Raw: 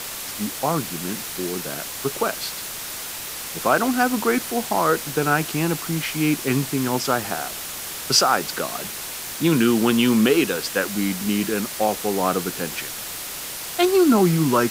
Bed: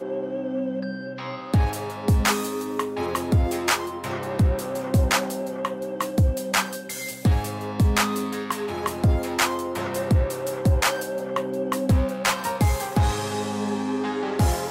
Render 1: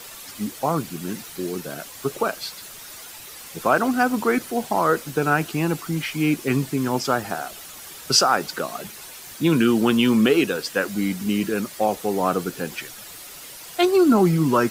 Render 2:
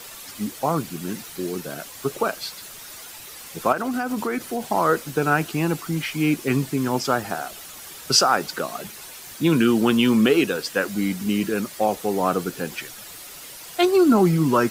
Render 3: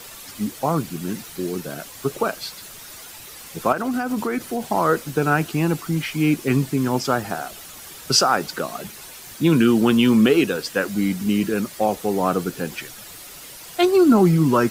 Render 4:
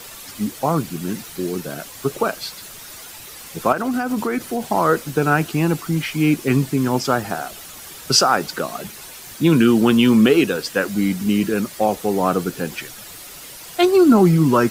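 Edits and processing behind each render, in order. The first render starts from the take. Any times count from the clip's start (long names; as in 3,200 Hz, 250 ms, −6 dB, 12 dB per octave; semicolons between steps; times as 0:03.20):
broadband denoise 10 dB, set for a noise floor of −32 dBFS
0:03.72–0:04.67: downward compressor, threshold −21 dBFS
low-shelf EQ 260 Hz +4.5 dB
level +2 dB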